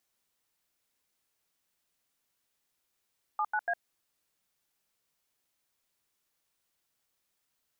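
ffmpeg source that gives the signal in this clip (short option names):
-f lavfi -i "aevalsrc='0.0335*clip(min(mod(t,0.144),0.058-mod(t,0.144))/0.002,0,1)*(eq(floor(t/0.144),0)*(sin(2*PI*852*mod(t,0.144))+sin(2*PI*1209*mod(t,0.144)))+eq(floor(t/0.144),1)*(sin(2*PI*852*mod(t,0.144))+sin(2*PI*1477*mod(t,0.144)))+eq(floor(t/0.144),2)*(sin(2*PI*697*mod(t,0.144))+sin(2*PI*1633*mod(t,0.144))))':d=0.432:s=44100"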